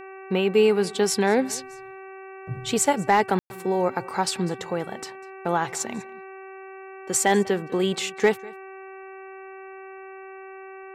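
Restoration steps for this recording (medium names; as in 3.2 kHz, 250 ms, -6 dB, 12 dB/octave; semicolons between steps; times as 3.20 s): clip repair -9 dBFS; de-hum 383.5 Hz, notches 7; room tone fill 3.39–3.50 s; inverse comb 197 ms -22 dB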